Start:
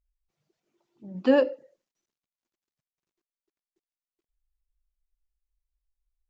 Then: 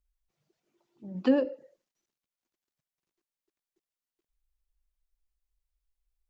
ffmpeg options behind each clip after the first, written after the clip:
-filter_complex "[0:a]acrossover=split=390[s0][s1];[s1]acompressor=threshold=0.0316:ratio=6[s2];[s0][s2]amix=inputs=2:normalize=0"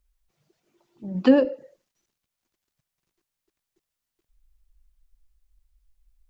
-af "asubboost=boost=2.5:cutoff=180,volume=2.51"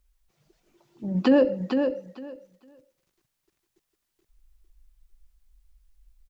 -filter_complex "[0:a]alimiter=limit=0.2:level=0:latency=1:release=11,asplit=2[s0][s1];[s1]aecho=0:1:454|908|1362:0.501|0.0852|0.0145[s2];[s0][s2]amix=inputs=2:normalize=0,volume=1.5"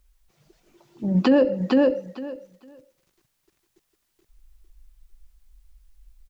-af "alimiter=limit=0.168:level=0:latency=1:release=257,volume=2"

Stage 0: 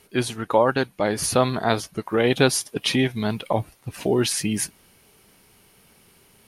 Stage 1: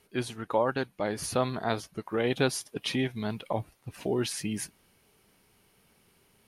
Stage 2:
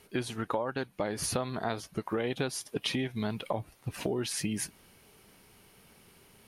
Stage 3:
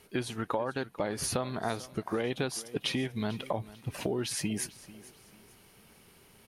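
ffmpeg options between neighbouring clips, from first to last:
-af "equalizer=f=11000:t=o:w=2.2:g=-3,volume=0.398"
-af "acompressor=threshold=0.0178:ratio=6,volume=2"
-af "aecho=1:1:444|888|1332:0.119|0.0404|0.0137"

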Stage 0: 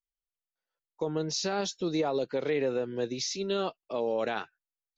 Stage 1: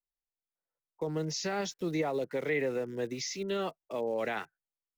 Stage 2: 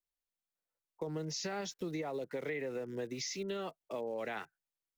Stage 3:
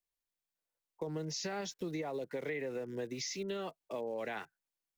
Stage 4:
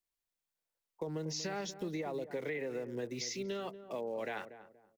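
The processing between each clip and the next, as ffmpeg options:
-filter_complex "[0:a]equalizer=f=100:t=o:w=0.33:g=3,equalizer=f=160:t=o:w=0.33:g=4,equalizer=f=2000:t=o:w=0.33:g=11,equalizer=f=4000:t=o:w=0.33:g=-6,acrossover=split=240|620|1300[s0][s1][s2][s3];[s3]aeval=exprs='val(0)*gte(abs(val(0)),0.00282)':c=same[s4];[s0][s1][s2][s4]amix=inputs=4:normalize=0,volume=0.708"
-af "acompressor=threshold=0.02:ratio=6,volume=0.891"
-af "bandreject=f=1300:w=15"
-filter_complex "[0:a]asplit=2[s0][s1];[s1]adelay=238,lowpass=f=890:p=1,volume=0.282,asplit=2[s2][s3];[s3]adelay=238,lowpass=f=890:p=1,volume=0.32,asplit=2[s4][s5];[s5]adelay=238,lowpass=f=890:p=1,volume=0.32[s6];[s0][s2][s4][s6]amix=inputs=4:normalize=0"

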